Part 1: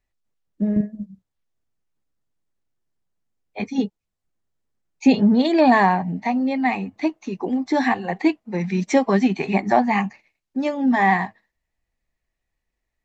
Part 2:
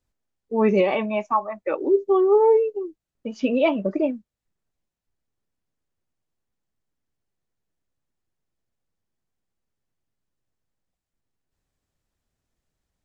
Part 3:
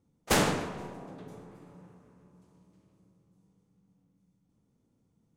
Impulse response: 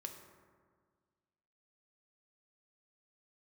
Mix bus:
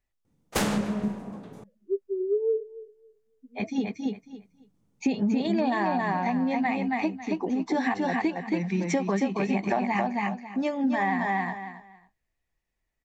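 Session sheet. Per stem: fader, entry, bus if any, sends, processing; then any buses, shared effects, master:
-3.5 dB, 0.00 s, no send, echo send -3.5 dB, band-stop 4.1 kHz, Q 23
-4.0 dB, 0.00 s, no send, echo send -21.5 dB, peaking EQ 3.5 kHz -9 dB 2.3 oct; spectral contrast expander 4:1
+1.0 dB, 0.25 s, muted 1.64–3.93 s, no send, no echo send, none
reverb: none
echo: feedback delay 274 ms, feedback 19%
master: compression 6:1, threshold -22 dBFS, peak gain reduction 10 dB

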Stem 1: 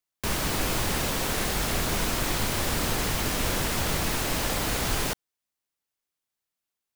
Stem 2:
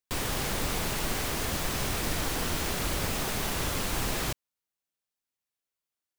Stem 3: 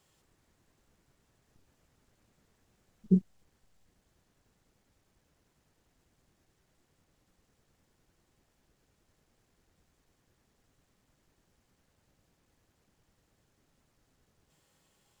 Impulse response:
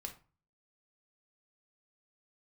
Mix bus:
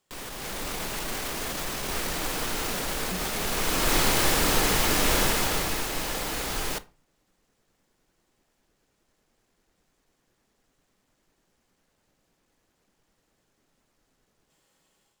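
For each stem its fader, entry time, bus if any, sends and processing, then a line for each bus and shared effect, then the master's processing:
3.31 s -16 dB -> 3.96 s -5 dB -> 5.22 s -5 dB -> 5.89 s -12.5 dB, 1.65 s, no bus, send -3 dB, none
0.0 dB, 0.00 s, bus A, no send, none
-4.5 dB, 0.00 s, bus A, no send, hum notches 50/100/150 Hz
bus A: 0.0 dB, peak limiter -29 dBFS, peak gain reduction 14.5 dB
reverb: on, RT60 0.35 s, pre-delay 6 ms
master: peaking EQ 84 Hz -9 dB 1.7 oct; level rider gain up to 7 dB

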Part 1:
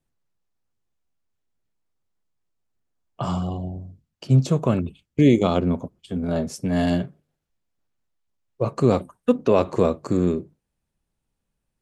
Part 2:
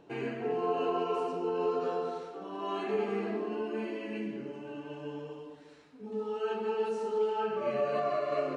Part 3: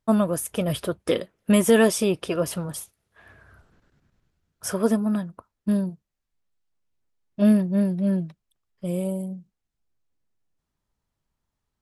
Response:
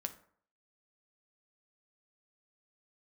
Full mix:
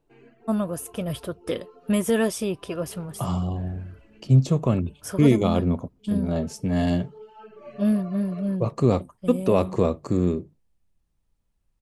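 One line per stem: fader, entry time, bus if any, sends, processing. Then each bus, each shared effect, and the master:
-3.0 dB, 0.00 s, no send, band-stop 1.5 kHz, Q 10
6.97 s -17 dB -> 7.63 s -10 dB, 0.00 s, no send, reverb removal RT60 0.82 s
-5.5 dB, 0.40 s, no send, none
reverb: none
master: bass shelf 85 Hz +11 dB

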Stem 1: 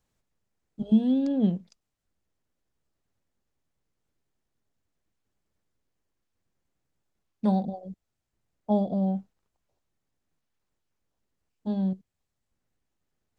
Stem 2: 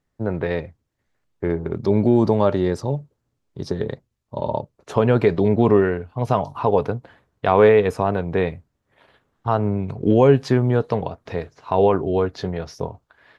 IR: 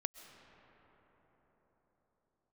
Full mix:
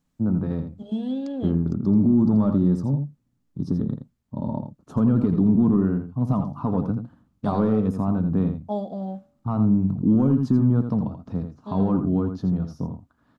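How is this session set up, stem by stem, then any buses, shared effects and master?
0.0 dB, 0.00 s, no send, no echo send, bass shelf 180 Hz -12 dB; de-hum 71.9 Hz, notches 39
-0.5 dB, 0.00 s, no send, echo send -8 dB, saturation -6.5 dBFS, distortion -19 dB; FFT filter 120 Hz 0 dB, 180 Hz +7 dB, 270 Hz +7 dB, 410 Hz -13 dB, 1.3 kHz -9 dB, 2 kHz -26 dB, 3.1 kHz -19 dB, 5.2 kHz -14 dB, 8.7 kHz -11 dB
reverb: none
echo: delay 83 ms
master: peaking EQ 1.2 kHz +2.5 dB 0.32 oct; peak limiter -11 dBFS, peak gain reduction 6 dB

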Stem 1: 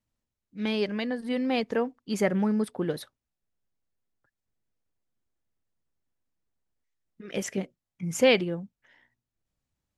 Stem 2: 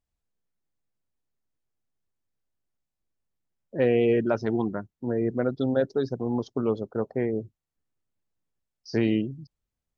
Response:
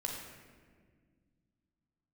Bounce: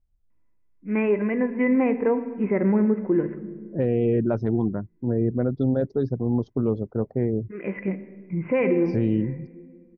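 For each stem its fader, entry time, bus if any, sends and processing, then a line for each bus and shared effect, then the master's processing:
-5.5 dB, 0.30 s, send -9.5 dB, steep low-pass 2.6 kHz 96 dB/octave; harmonic-percussive split harmonic +9 dB; small resonant body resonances 330/1000/2000 Hz, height 11 dB
-4.0 dB, 0.00 s, no send, tilt EQ -4 dB/octave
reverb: on, RT60 1.7 s, pre-delay 14 ms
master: peak limiter -13 dBFS, peak gain reduction 10 dB

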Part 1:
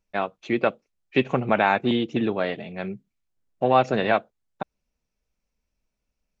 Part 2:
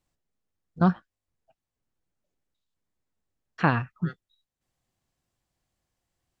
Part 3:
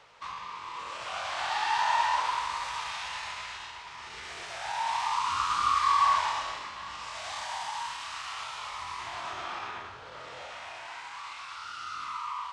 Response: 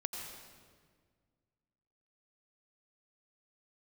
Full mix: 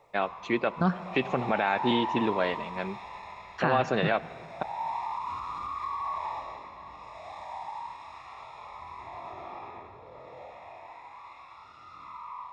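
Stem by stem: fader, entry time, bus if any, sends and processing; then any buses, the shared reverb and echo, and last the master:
-1.5 dB, 0.00 s, send -18.5 dB, none
+1.5 dB, 0.00 s, send -14.5 dB, none
+2.5 dB, 0.00 s, send -9 dB, peak limiter -20.5 dBFS, peak gain reduction 6 dB; boxcar filter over 29 samples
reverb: on, RT60 1.7 s, pre-delay 81 ms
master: bass shelf 370 Hz -5.5 dB; peak limiter -14 dBFS, peak gain reduction 9 dB

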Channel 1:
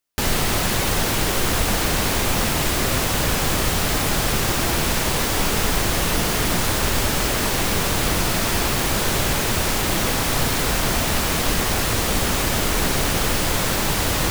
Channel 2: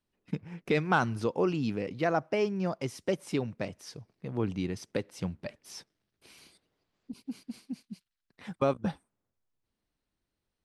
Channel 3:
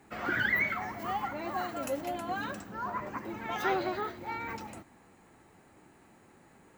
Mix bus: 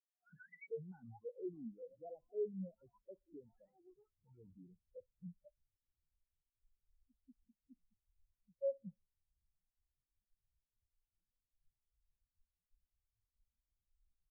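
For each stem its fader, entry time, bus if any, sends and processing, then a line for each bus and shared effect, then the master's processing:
-18.5 dB, 1.25 s, no send, no echo send, none
+1.5 dB, 0.00 s, no send, echo send -18.5 dB, peaking EQ 530 Hz +6 dB 0.39 oct
0.0 dB, 0.00 s, no send, no echo send, cancelling through-zero flanger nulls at 0.6 Hz, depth 4.8 ms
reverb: none
echo: feedback delay 62 ms, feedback 57%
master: saturation -30 dBFS, distortion -5 dB; spectral contrast expander 4:1

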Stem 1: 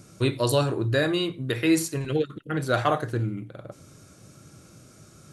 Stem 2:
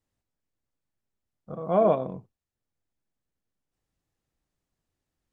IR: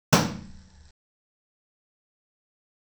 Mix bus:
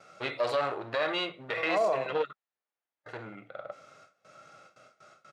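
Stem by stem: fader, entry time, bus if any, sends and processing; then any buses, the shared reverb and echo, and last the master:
+0.5 dB, 0.00 s, muted 2.33–3.06 s, no send, gate with hold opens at -40 dBFS; comb 1.5 ms, depth 49%; one-sided clip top -27 dBFS
0.0 dB, 0.00 s, no send, gain riding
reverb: none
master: harmonic-percussive split harmonic +6 dB; band-pass 650–2700 Hz; peak limiter -18.5 dBFS, peak gain reduction 8.5 dB

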